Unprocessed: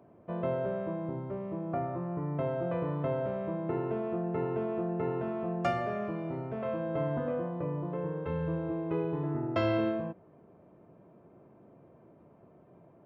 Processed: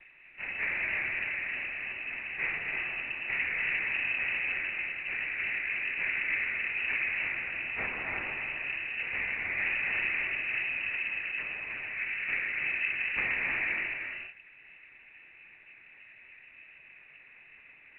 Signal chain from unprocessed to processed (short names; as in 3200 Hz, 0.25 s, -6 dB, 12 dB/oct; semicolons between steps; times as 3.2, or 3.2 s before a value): in parallel at -3 dB: compressor 8:1, threshold -47 dBFS, peak gain reduction 21 dB; on the sum: plain phase-vocoder stretch 1.5×; noise vocoder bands 4; flange 1.3 Hz, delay 4 ms, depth 9.6 ms, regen -51%; speed mistake 44.1 kHz file played as 48 kHz; on a send at -1.5 dB: reverb, pre-delay 3 ms; on the sum: inverted band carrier 2800 Hz; gain +4 dB; µ-law 64 kbps 8000 Hz